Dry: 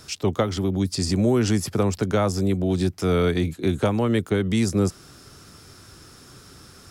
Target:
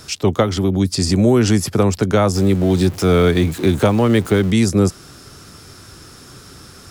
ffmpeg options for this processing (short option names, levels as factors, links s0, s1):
-filter_complex "[0:a]asettb=1/sr,asplit=3[s0][s1][s2];[s0]atrim=end=2.354[s3];[s1]atrim=start=2.35:end=4.51,asetpts=PTS-STARTPTS,afade=t=in:d=0.004:c=qsin,afade=t=out:st=2.156:d=0.004:c=qsin,aeval=exprs='val(0)+0.5*0.0188*sgn(val(0))':c=same[s4];[s2]atrim=start=4.506[s5];[s3][s4]acrossfade=d=0.004:c1=hsin:c2=qsin[s6];[s6][s5]acrossfade=d=0.004:c1=qsin:c2=hsin,volume=2.11"